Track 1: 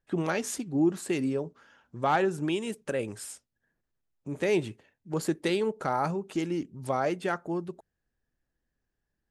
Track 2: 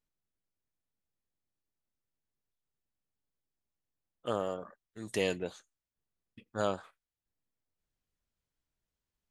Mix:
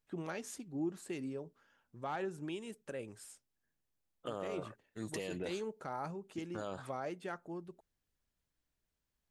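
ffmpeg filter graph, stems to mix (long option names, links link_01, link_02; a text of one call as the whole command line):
ffmpeg -i stem1.wav -i stem2.wav -filter_complex "[0:a]volume=-12.5dB[link_01];[1:a]alimiter=limit=-22dB:level=0:latency=1:release=39,volume=1dB[link_02];[link_01][link_02]amix=inputs=2:normalize=0,alimiter=level_in=5dB:limit=-24dB:level=0:latency=1:release=62,volume=-5dB" out.wav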